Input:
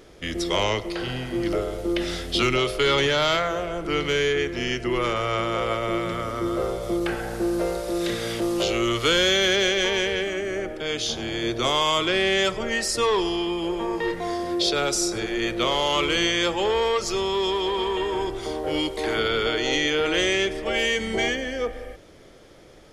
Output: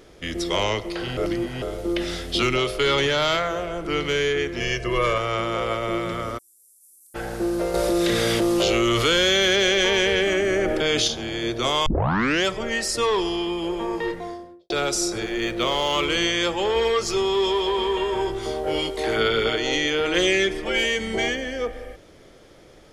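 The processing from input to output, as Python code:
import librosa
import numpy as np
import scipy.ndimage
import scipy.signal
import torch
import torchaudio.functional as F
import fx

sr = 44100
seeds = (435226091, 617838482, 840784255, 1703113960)

y = fx.comb(x, sr, ms=1.8, depth=0.83, at=(4.6, 5.18))
y = fx.cheby2_highpass(y, sr, hz=2900.0, order=4, stop_db=60, at=(6.37, 7.14), fade=0.02)
y = fx.env_flatten(y, sr, amount_pct=70, at=(7.74, 11.08))
y = fx.studio_fade_out(y, sr, start_s=13.94, length_s=0.76)
y = fx.median_filter(y, sr, points=3, at=(15.22, 16.05))
y = fx.doubler(y, sr, ms=18.0, db=-5, at=(16.74, 19.56))
y = fx.comb(y, sr, ms=5.7, depth=0.65, at=(20.14, 20.84))
y = fx.edit(y, sr, fx.reverse_span(start_s=1.17, length_s=0.45),
    fx.tape_start(start_s=11.86, length_s=0.59), tone=tone)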